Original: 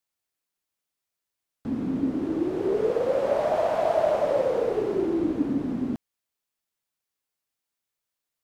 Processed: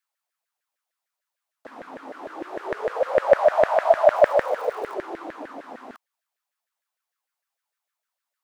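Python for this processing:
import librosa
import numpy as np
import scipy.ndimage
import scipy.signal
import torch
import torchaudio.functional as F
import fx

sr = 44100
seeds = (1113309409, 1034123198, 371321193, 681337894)

y = fx.dmg_crackle(x, sr, seeds[0], per_s=260.0, level_db=-37.0, at=(4.14, 4.93), fade=0.02)
y = fx.filter_lfo_highpass(y, sr, shape='saw_down', hz=6.6, low_hz=550.0, high_hz=1800.0, q=5.1)
y = y * 10.0 ** (-1.5 / 20.0)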